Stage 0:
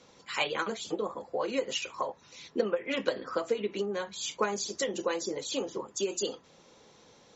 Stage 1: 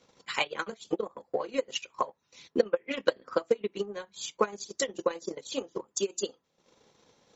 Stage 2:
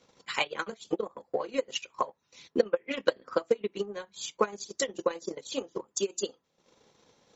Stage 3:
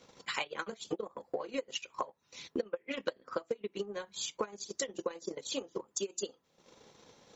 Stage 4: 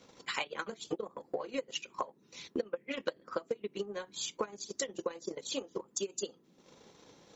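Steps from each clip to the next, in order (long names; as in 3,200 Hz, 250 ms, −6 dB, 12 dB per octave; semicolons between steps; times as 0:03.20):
transient designer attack +11 dB, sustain −12 dB; level −6 dB
no processing that can be heard
downward compressor 3 to 1, threshold −40 dBFS, peak gain reduction 17 dB; level +4 dB
noise in a band 140–410 Hz −67 dBFS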